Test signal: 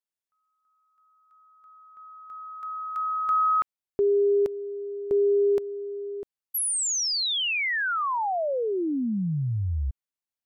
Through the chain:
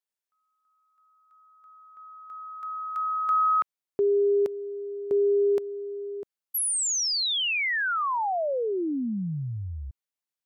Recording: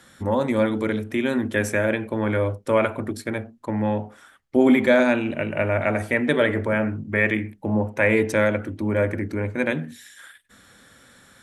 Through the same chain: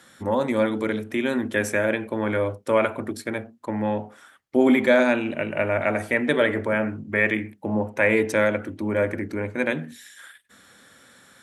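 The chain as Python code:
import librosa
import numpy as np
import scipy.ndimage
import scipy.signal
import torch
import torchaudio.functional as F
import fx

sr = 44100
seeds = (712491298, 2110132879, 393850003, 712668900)

y = fx.highpass(x, sr, hz=180.0, slope=6)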